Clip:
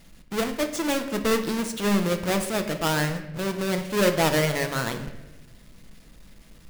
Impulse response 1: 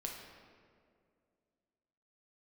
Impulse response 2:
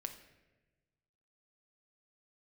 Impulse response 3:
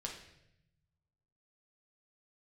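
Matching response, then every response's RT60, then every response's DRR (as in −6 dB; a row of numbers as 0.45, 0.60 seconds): 2; 2.2, 1.2, 0.80 seconds; 0.0, 6.0, −0.5 decibels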